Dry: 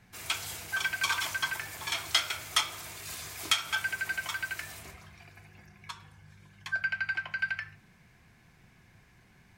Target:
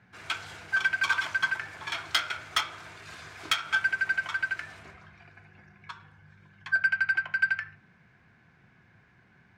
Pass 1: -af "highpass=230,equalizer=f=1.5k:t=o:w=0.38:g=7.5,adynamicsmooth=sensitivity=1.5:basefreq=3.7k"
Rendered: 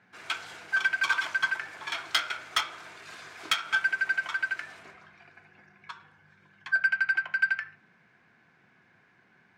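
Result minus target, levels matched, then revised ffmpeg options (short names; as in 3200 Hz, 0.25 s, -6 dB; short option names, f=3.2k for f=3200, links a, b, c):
125 Hz band -9.5 dB
-af "highpass=85,equalizer=f=1.5k:t=o:w=0.38:g=7.5,adynamicsmooth=sensitivity=1.5:basefreq=3.7k"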